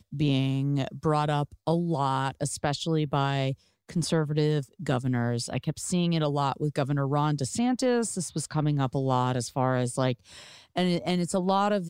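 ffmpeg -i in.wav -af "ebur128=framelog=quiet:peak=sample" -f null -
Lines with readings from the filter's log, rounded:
Integrated loudness:
  I:         -27.6 LUFS
  Threshold: -37.7 LUFS
Loudness range:
  LRA:         1.1 LU
  Threshold: -47.8 LUFS
  LRA low:   -28.3 LUFS
  LRA high:  -27.2 LUFS
Sample peak:
  Peak:      -11.8 dBFS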